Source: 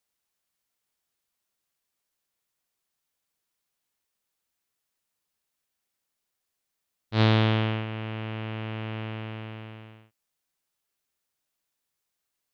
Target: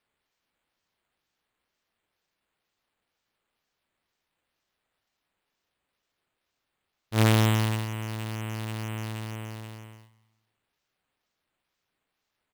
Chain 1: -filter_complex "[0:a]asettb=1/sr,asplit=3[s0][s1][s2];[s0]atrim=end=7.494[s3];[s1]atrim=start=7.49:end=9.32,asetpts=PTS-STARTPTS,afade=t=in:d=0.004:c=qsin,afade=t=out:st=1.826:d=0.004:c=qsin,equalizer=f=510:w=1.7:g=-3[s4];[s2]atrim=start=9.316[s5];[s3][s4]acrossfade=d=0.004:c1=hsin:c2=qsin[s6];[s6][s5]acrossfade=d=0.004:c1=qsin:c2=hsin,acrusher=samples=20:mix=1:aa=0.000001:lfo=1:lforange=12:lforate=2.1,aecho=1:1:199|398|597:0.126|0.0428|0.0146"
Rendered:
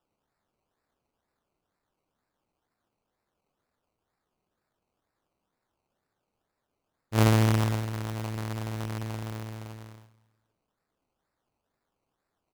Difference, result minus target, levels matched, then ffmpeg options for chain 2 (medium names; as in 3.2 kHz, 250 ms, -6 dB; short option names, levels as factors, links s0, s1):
decimation with a swept rate: distortion +6 dB
-filter_complex "[0:a]asettb=1/sr,asplit=3[s0][s1][s2];[s0]atrim=end=7.494[s3];[s1]atrim=start=7.49:end=9.32,asetpts=PTS-STARTPTS,afade=t=in:d=0.004:c=qsin,afade=t=out:st=1.826:d=0.004:c=qsin,equalizer=f=510:w=1.7:g=-3[s4];[s2]atrim=start=9.316[s5];[s3][s4]acrossfade=d=0.004:c1=hsin:c2=qsin[s6];[s6][s5]acrossfade=d=0.004:c1=qsin:c2=hsin,acrusher=samples=6:mix=1:aa=0.000001:lfo=1:lforange=3.6:lforate=2.1,aecho=1:1:199|398|597:0.126|0.0428|0.0146"